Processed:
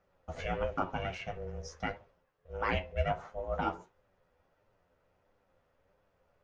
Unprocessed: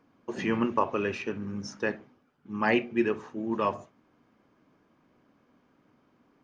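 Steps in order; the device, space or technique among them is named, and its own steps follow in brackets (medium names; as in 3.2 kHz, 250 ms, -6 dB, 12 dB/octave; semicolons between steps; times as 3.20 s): alien voice (ring modulator 280 Hz; flange 1.5 Hz, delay 9.5 ms, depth 2.9 ms, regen +30%); 3.05–3.61 s: dynamic bell 1 kHz, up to +7 dB, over -51 dBFS, Q 1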